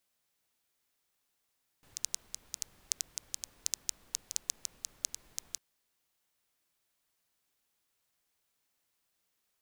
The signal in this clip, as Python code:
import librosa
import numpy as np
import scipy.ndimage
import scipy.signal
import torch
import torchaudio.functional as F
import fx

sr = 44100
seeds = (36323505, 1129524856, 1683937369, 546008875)

y = fx.rain(sr, seeds[0], length_s=3.75, drops_per_s=6.5, hz=6300.0, bed_db=-21.0)